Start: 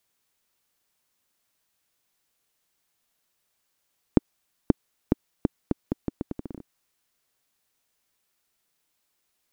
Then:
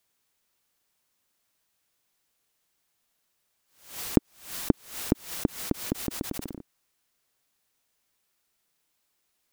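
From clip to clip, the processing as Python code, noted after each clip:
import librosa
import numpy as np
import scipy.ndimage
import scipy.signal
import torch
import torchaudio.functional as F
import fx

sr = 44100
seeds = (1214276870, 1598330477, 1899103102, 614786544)

y = fx.pre_swell(x, sr, db_per_s=120.0)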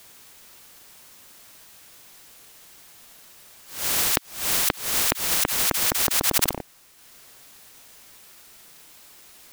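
y = fx.transient(x, sr, attack_db=3, sustain_db=-5)
y = fx.spectral_comp(y, sr, ratio=10.0)
y = y * 10.0 ** (-2.5 / 20.0)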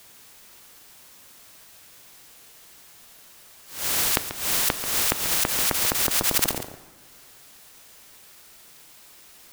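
y = x + 10.0 ** (-11.5 / 20.0) * np.pad(x, (int(138 * sr / 1000.0), 0))[:len(x)]
y = fx.rev_plate(y, sr, seeds[0], rt60_s=1.6, hf_ratio=0.65, predelay_ms=0, drr_db=12.5)
y = y * 10.0 ** (-1.0 / 20.0)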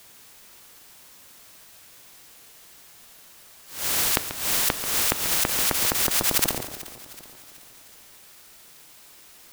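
y = fx.echo_feedback(x, sr, ms=375, feedback_pct=49, wet_db=-17.0)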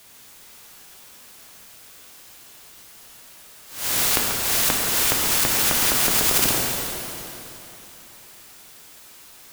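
y = fx.rev_plate(x, sr, seeds[1], rt60_s=3.0, hf_ratio=0.85, predelay_ms=0, drr_db=-1.5)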